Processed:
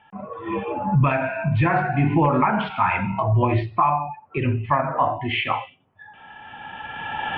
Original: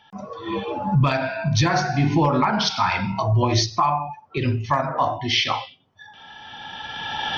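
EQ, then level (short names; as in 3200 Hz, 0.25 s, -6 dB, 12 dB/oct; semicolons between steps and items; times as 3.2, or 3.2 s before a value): elliptic low-pass 2700 Hz, stop band 60 dB; +1.0 dB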